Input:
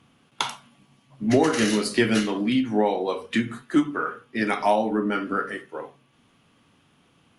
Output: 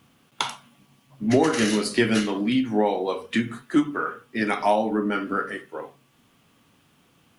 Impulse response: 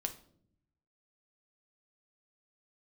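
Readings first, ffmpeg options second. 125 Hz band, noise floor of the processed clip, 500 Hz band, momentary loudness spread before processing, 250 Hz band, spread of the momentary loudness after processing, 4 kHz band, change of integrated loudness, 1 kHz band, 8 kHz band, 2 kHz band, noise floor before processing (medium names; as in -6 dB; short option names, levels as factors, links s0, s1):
0.0 dB, -62 dBFS, 0.0 dB, 10 LU, 0.0 dB, 10 LU, 0.0 dB, 0.0 dB, 0.0 dB, 0.0 dB, 0.0 dB, -62 dBFS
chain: -af "acrusher=bits=10:mix=0:aa=0.000001"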